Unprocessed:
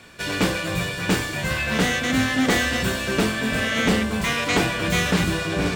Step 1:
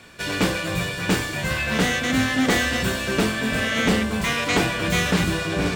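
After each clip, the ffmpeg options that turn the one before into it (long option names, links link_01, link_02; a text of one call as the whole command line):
ffmpeg -i in.wav -af anull out.wav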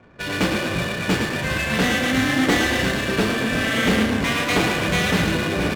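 ffmpeg -i in.wav -filter_complex "[0:a]asplit=9[link_01][link_02][link_03][link_04][link_05][link_06][link_07][link_08][link_09];[link_02]adelay=109,afreqshift=30,volume=-5.5dB[link_10];[link_03]adelay=218,afreqshift=60,volume=-9.9dB[link_11];[link_04]adelay=327,afreqshift=90,volume=-14.4dB[link_12];[link_05]adelay=436,afreqshift=120,volume=-18.8dB[link_13];[link_06]adelay=545,afreqshift=150,volume=-23.2dB[link_14];[link_07]adelay=654,afreqshift=180,volume=-27.7dB[link_15];[link_08]adelay=763,afreqshift=210,volume=-32.1dB[link_16];[link_09]adelay=872,afreqshift=240,volume=-36.6dB[link_17];[link_01][link_10][link_11][link_12][link_13][link_14][link_15][link_16][link_17]amix=inputs=9:normalize=0,adynamicsmooth=sensitivity=6.5:basefreq=790" out.wav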